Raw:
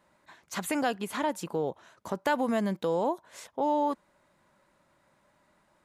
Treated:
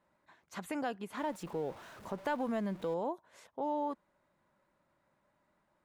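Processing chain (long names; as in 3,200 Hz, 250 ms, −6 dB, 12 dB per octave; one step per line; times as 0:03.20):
0:01.17–0:02.94: converter with a step at zero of −38.5 dBFS
high-shelf EQ 3,300 Hz −8.5 dB
level −7.5 dB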